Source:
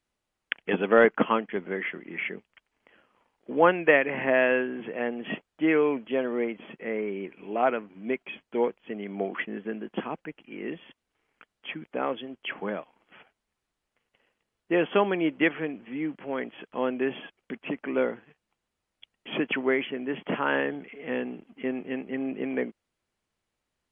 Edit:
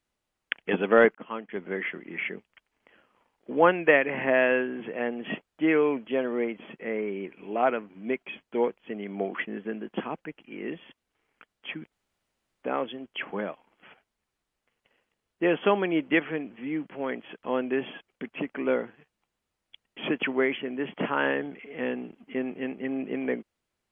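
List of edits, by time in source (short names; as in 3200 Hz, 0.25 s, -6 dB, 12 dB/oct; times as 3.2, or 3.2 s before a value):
1.15–1.76 fade in
11.92 insert room tone 0.71 s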